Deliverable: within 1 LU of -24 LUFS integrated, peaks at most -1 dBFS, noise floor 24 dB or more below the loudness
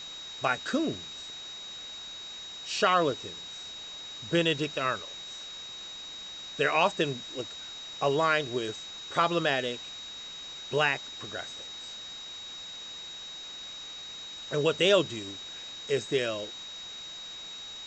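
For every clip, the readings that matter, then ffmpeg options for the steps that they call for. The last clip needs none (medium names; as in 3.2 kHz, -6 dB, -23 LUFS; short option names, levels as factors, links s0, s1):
steady tone 3.8 kHz; tone level -40 dBFS; noise floor -42 dBFS; noise floor target -56 dBFS; loudness -31.5 LUFS; peak level -10.0 dBFS; loudness target -24.0 LUFS
-> -af "bandreject=f=3800:w=30"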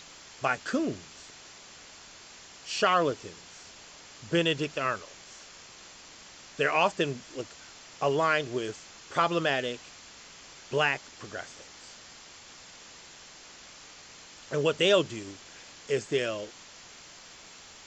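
steady tone not found; noise floor -50 dBFS; noise floor target -53 dBFS
-> -af "afftdn=nr=6:nf=-50"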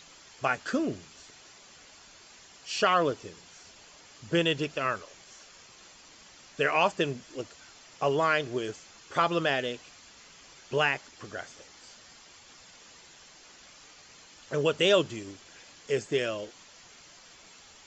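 noise floor -54 dBFS; loudness -29.0 LUFS; peak level -10.0 dBFS; loudness target -24.0 LUFS
-> -af "volume=1.78"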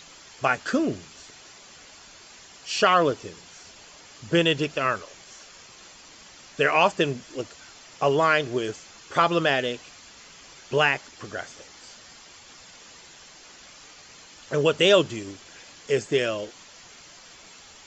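loudness -24.0 LUFS; peak level -5.0 dBFS; noise floor -49 dBFS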